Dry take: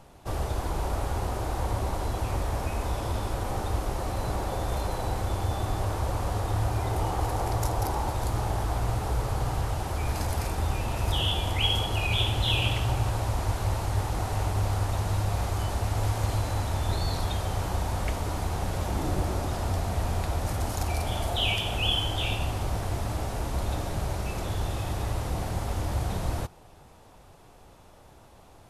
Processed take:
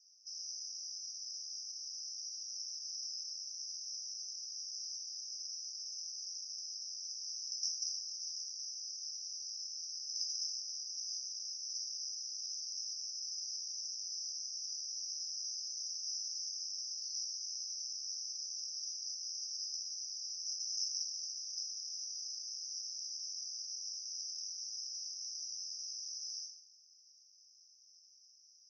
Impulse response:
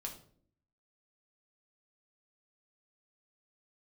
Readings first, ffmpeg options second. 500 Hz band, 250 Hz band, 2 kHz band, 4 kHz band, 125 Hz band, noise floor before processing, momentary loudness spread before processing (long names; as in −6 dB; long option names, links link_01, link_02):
below −40 dB, below −40 dB, below −40 dB, −6.0 dB, below −40 dB, −52 dBFS, 6 LU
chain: -filter_complex "[0:a]asuperpass=centerf=5500:order=12:qfactor=4.5[link_01];[1:a]atrim=start_sample=2205,asetrate=22050,aresample=44100[link_02];[link_01][link_02]afir=irnorm=-1:irlink=0,volume=9.5dB"